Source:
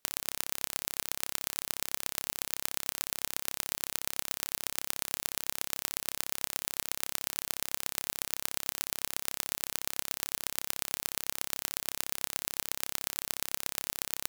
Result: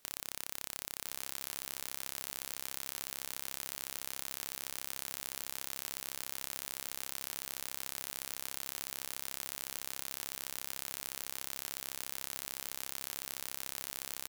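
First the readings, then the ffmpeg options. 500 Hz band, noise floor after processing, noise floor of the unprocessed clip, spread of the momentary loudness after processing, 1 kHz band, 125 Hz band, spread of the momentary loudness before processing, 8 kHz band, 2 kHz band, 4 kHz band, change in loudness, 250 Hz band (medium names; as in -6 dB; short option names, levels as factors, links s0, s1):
-6.0 dB, -51 dBFS, -76 dBFS, 0 LU, -6.0 dB, -6.0 dB, 1 LU, -6.0 dB, -6.0 dB, -6.0 dB, -6.0 dB, -6.0 dB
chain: -af "aeval=exprs='0.15*(abs(mod(val(0)/0.15+3,4)-2)-1)':c=same,aecho=1:1:1019:0.355,volume=2.51"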